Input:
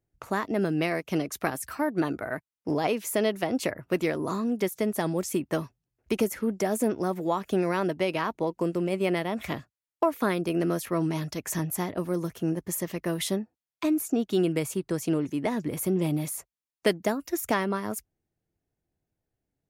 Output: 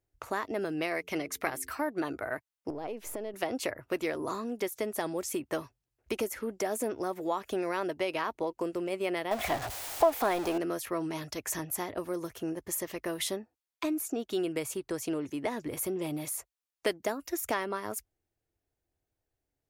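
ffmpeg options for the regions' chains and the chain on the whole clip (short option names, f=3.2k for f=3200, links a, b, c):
-filter_complex "[0:a]asettb=1/sr,asplit=3[a][b][c];[a]atrim=end=0.964[d];[b]atrim=start=0.96:end=1.7,asetpts=PTS-STARTPTS,afade=t=in:d=0.004:c=qsin,afade=t=out:st=0.736:d=0.004:c=qsin,equalizer=f=2.1k:w=5.3:g=8,bandreject=f=88.19:t=h:w=4,bandreject=f=176.38:t=h:w=4,bandreject=f=264.57:t=h:w=4,bandreject=f=352.76:t=h:w=4,bandreject=f=440.95:t=h:w=4[e];[c]atrim=start=1.696[f];[d][e]acrossfade=d=0.004:c1=hsin:c2=qsin[g];[g][f]acrossfade=d=0.004:c1=qsin:c2=hsin,asettb=1/sr,asplit=3[h][i][j];[h]atrim=end=2.704[k];[i]atrim=start=2.7:end=3.34,asetpts=PTS-STARTPTS,afade=t=in:d=0.004:c=qsin,afade=t=out:st=0.636:d=0.004:c=qsin,aeval=exprs='if(lt(val(0),0),0.708*val(0),val(0))':c=same,tiltshelf=f=1.2k:g=7,acompressor=threshold=-34dB:ratio=3:attack=3.2:release=140:knee=1:detection=peak[l];[j]atrim=start=3.336[m];[k][l]acrossfade=d=0.004:c1=hsin:c2=qsin[n];[n][m]acrossfade=d=0.004:c1=qsin:c2=hsin,asettb=1/sr,asplit=3[o][p][q];[o]atrim=end=9.314[r];[p]atrim=start=9.31:end=10.58,asetpts=PTS-STARTPTS,afade=t=in:d=0.004:c=qsin,afade=t=out:st=1.266:d=0.004:c=qsin,aeval=exprs='val(0)+0.5*0.0335*sgn(val(0))':c=same,equalizer=f=730:w=2.6:g=11.5[s];[q]atrim=start=10.576[t];[r][s]acrossfade=d=0.004:c1=hsin:c2=qsin[u];[u][t]acrossfade=d=0.004:c1=qsin:c2=hsin,acompressor=threshold=-31dB:ratio=1.5,equalizer=f=180:w=1.6:g=-12.5"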